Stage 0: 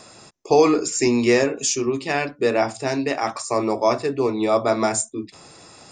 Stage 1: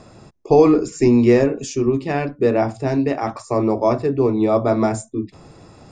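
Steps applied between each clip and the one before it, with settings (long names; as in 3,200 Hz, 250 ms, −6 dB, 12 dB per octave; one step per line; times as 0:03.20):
spectral tilt −3.5 dB per octave
level −1 dB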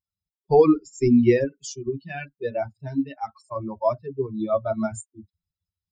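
spectral dynamics exaggerated over time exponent 3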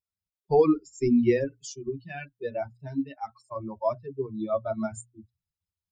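mains-hum notches 60/120 Hz
level −4.5 dB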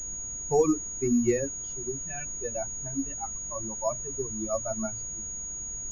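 background noise brown −41 dBFS
switching amplifier with a slow clock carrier 6,700 Hz
level −3 dB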